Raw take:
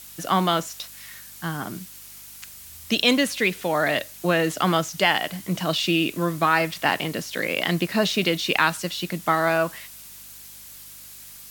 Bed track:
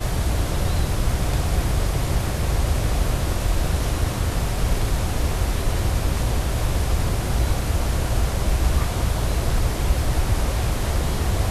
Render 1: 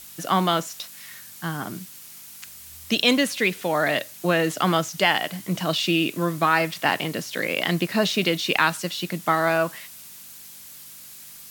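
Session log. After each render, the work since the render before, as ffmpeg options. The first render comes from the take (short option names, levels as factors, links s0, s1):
-af "bandreject=f=50:t=h:w=4,bandreject=f=100:t=h:w=4"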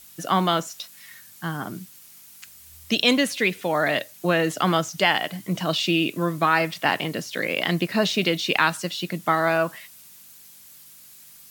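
-af "afftdn=nr=6:nf=-43"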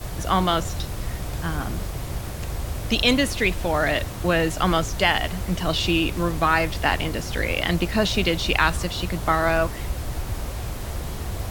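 -filter_complex "[1:a]volume=0.398[s0];[0:a][s0]amix=inputs=2:normalize=0"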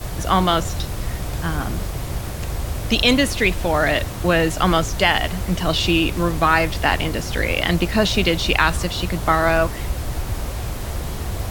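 -af "volume=1.5,alimiter=limit=0.794:level=0:latency=1"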